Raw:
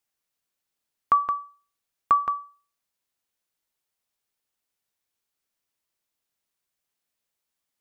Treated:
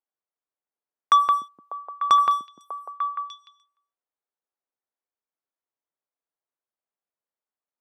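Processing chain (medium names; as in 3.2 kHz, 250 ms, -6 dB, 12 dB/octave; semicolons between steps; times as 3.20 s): high-pass 170 Hz 6 dB/octave; tone controls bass -10 dB, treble -5 dB; waveshaping leveller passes 2; repeats whose band climbs or falls 298 ms, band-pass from 220 Hz, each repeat 1.4 oct, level -2.5 dB; level-controlled noise filter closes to 1.2 kHz, open at -35.5 dBFS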